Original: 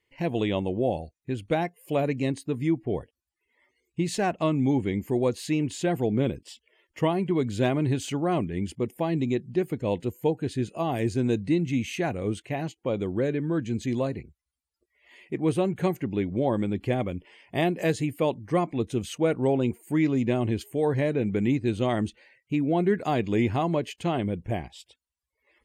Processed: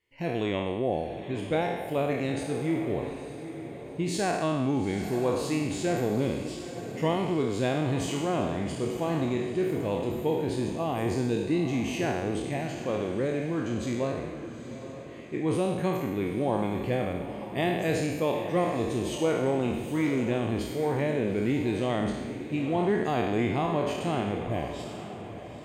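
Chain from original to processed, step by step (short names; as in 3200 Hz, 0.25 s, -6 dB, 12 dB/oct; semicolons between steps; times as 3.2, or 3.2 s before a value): spectral trails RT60 1.16 s; diffused feedback echo 0.87 s, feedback 42%, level -10.5 dB; gain -4.5 dB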